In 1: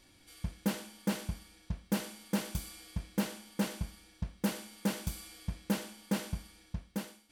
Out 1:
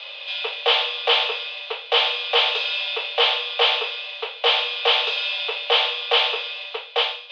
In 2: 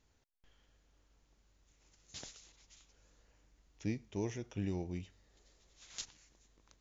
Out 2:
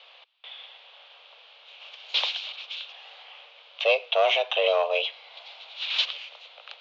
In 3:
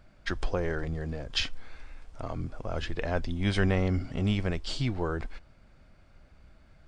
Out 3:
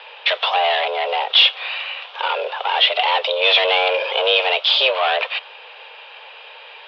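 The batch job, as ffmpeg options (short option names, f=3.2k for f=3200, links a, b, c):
-filter_complex "[0:a]asplit=2[a][b];[b]highpass=f=720:p=1,volume=32dB,asoftclip=type=tanh:threshold=-10.5dB[c];[a][c]amix=inputs=2:normalize=0,lowpass=f=1.1k:p=1,volume=-6dB,aexciter=amount=11.6:drive=4.4:freq=2.4k,highpass=f=190:t=q:w=0.5412,highpass=f=190:t=q:w=1.307,lowpass=f=3.1k:t=q:w=0.5176,lowpass=f=3.1k:t=q:w=0.7071,lowpass=f=3.1k:t=q:w=1.932,afreqshift=270,volume=2dB"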